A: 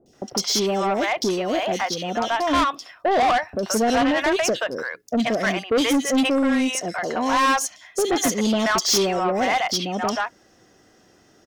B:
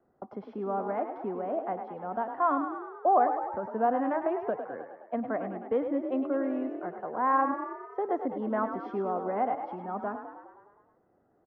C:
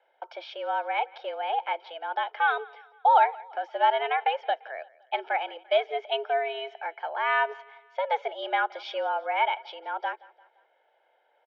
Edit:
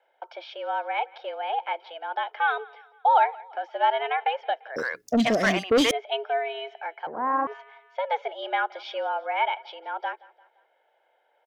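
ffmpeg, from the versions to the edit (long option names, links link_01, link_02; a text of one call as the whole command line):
ffmpeg -i take0.wav -i take1.wav -i take2.wav -filter_complex "[2:a]asplit=3[link_01][link_02][link_03];[link_01]atrim=end=4.762[link_04];[0:a]atrim=start=4.758:end=5.912[link_05];[link_02]atrim=start=5.908:end=7.072[link_06];[1:a]atrim=start=7.068:end=7.472[link_07];[link_03]atrim=start=7.468[link_08];[link_04][link_05]acrossfade=duration=0.004:curve1=hsin:curve2=hsin[link_09];[link_09][link_06]acrossfade=duration=0.004:curve1=hsin:curve2=hsin[link_10];[link_10][link_07]acrossfade=duration=0.004:curve1=hsin:curve2=hsin[link_11];[link_11][link_08]acrossfade=duration=0.004:curve1=hsin:curve2=hsin" out.wav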